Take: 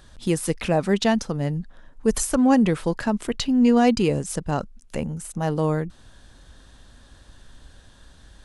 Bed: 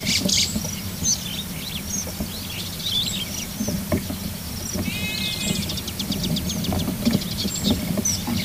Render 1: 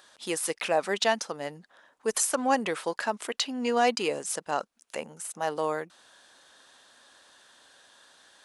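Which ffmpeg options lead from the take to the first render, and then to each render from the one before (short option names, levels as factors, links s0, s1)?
-af "highpass=590"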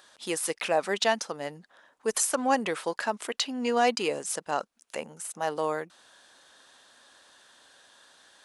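-af anull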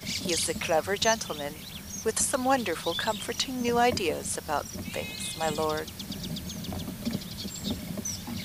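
-filter_complex "[1:a]volume=0.266[s0];[0:a][s0]amix=inputs=2:normalize=0"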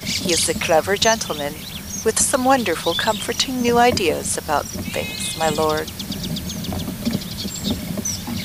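-af "volume=2.99,alimiter=limit=0.708:level=0:latency=1"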